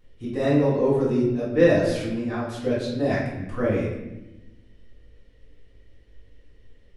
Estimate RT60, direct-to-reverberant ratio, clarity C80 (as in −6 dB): 1.0 s, −9.5 dB, 4.5 dB